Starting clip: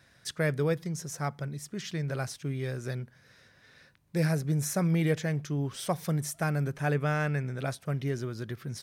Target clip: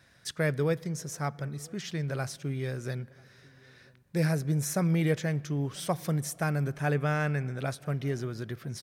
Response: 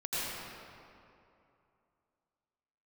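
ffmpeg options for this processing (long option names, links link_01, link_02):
-filter_complex "[0:a]asplit=2[link_01][link_02];[link_02]adelay=991.3,volume=-26dB,highshelf=frequency=4000:gain=-22.3[link_03];[link_01][link_03]amix=inputs=2:normalize=0,asplit=2[link_04][link_05];[1:a]atrim=start_sample=2205,lowpass=4400[link_06];[link_05][link_06]afir=irnorm=-1:irlink=0,volume=-29.5dB[link_07];[link_04][link_07]amix=inputs=2:normalize=0"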